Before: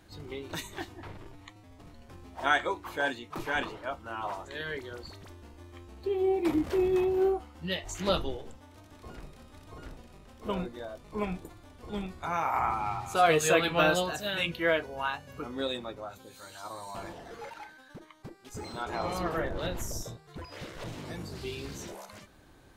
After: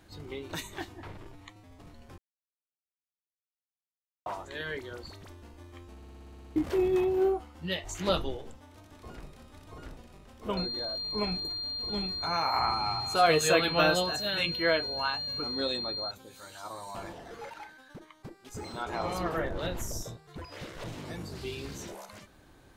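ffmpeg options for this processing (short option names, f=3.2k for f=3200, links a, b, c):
-filter_complex "[0:a]asettb=1/sr,asplit=3[a][b][c];[a]atrim=end=10.574[d];[b]atrim=start=10.57:end=16.11,asetpts=PTS-STARTPTS,afade=t=in:d=0.004:c=qsin,afade=t=out:st=5.536:d=0.004:c=qsin,aeval=exprs='val(0)+0.0224*sin(2*PI*4200*n/s)':c=same[e];[c]atrim=start=16.106[f];[d][e]acrossfade=d=0.004:c1=hsin:c2=qsin[g];[g][f]acrossfade=d=0.004:c1=qsin:c2=hsin,asplit=13[h][i][j][k][l][m][n][o][p][q][r][s][t];[h]atrim=end=2.18,asetpts=PTS-STARTPTS,afade=t=out:st=2.176:d=0.004:c=hsin[u];[i]atrim=start=2.18:end=4.26,asetpts=PTS-STARTPTS,volume=0[v];[j]atrim=start=4.26:end=6.022,asetpts=PTS-STARTPTS,afade=t=in:d=0.004:c=hsin[w];[k]atrim=start=5.958:end=6.022[x];[l]atrim=start=5.958:end=6.022[y];[m]atrim=start=5.958:end=6.022[z];[n]atrim=start=5.958:end=6.022[aa];[o]atrim=start=5.958:end=6.022[ab];[p]atrim=start=5.958:end=6.022[ac];[q]atrim=start=5.958:end=6.022[ad];[r]atrim=start=5.958:end=6.022[ae];[s]atrim=start=5.958:end=6.022[af];[t]atrim=start=6.558[ag];[u][v][w]concat=n=3:v=0:a=1[ah];[ah][x]acrossfade=d=0.004:c1=hsin:c2=hsin[ai];[ai][y]acrossfade=d=0.004:c1=hsin:c2=hsin[aj];[aj][z]acrossfade=d=0.004:c1=hsin:c2=hsin[ak];[ak][aa]acrossfade=d=0.004:c1=hsin:c2=hsin[al];[al][ab]acrossfade=d=0.004:c1=hsin:c2=hsin[am];[am][ac]acrossfade=d=0.004:c1=hsin:c2=hsin[an];[an][ad]acrossfade=d=0.004:c1=hsin:c2=hsin[ao];[ao][ae]acrossfade=d=0.004:c1=hsin:c2=hsin[ap];[ap][af]acrossfade=d=0.004:c1=hsin:c2=hsin[aq];[aq][ag]acrossfade=d=0.004:c1=hsin:c2=hsin"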